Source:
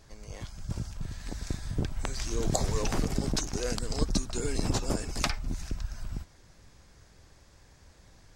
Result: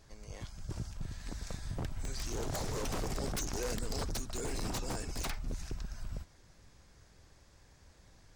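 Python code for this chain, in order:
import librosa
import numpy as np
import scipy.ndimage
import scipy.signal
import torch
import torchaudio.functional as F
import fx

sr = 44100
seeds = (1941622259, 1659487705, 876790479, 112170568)

y = 10.0 ** (-26.5 / 20.0) * (np.abs((x / 10.0 ** (-26.5 / 20.0) + 3.0) % 4.0 - 2.0) - 1.0)
y = fx.env_flatten(y, sr, amount_pct=50, at=(2.91, 4.13))
y = y * librosa.db_to_amplitude(-4.0)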